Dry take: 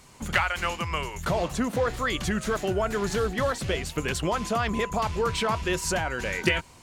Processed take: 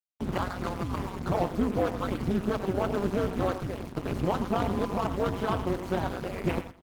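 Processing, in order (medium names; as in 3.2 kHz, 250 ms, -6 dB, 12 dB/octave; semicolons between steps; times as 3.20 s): median filter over 25 samples; 1.22–1.90 s: doubling 20 ms -13 dB; dynamic bell 400 Hz, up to -4 dB, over -39 dBFS, Q 0.89; 3.65–4.05 s: compression 2.5:1, threshold -33 dBFS, peak gain reduction 5.5 dB; 5.33–6.28 s: low-pass 8.3 kHz 12 dB/octave; bit crusher 7-bit; saturation -20 dBFS, distortion -22 dB; feedback delay 103 ms, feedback 19%, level -9 dB; AM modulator 190 Hz, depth 95%; high-pass 180 Hz 6 dB/octave; tilt EQ -2 dB/octave; trim +6 dB; Opus 16 kbps 48 kHz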